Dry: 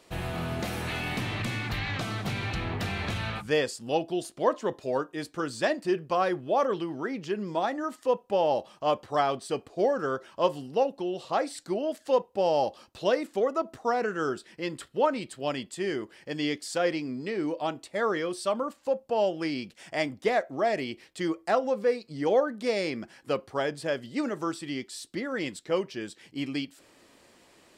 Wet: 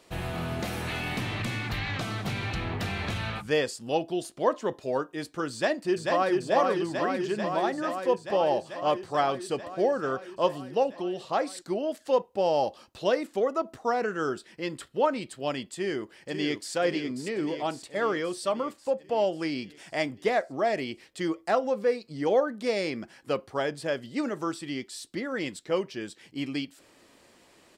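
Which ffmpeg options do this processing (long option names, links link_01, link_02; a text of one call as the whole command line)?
ffmpeg -i in.wav -filter_complex "[0:a]asplit=2[link_01][link_02];[link_02]afade=type=in:start_time=5.52:duration=0.01,afade=type=out:start_time=6.33:duration=0.01,aecho=0:1:440|880|1320|1760|2200|2640|3080|3520|3960|4400|4840|5280:0.707946|0.566357|0.453085|0.362468|0.289975|0.23198|0.185584|0.148467|0.118774|0.0950189|0.0760151|0.0608121[link_03];[link_01][link_03]amix=inputs=2:normalize=0,asplit=2[link_04][link_05];[link_05]afade=type=in:start_time=15.74:duration=0.01,afade=type=out:start_time=16.75:duration=0.01,aecho=0:1:540|1080|1620|2160|2700|3240|3780|4320|4860:0.421697|0.274103|0.178167|0.115808|0.0752755|0.048929|0.0318039|0.0206725|0.0134371[link_06];[link_04][link_06]amix=inputs=2:normalize=0" out.wav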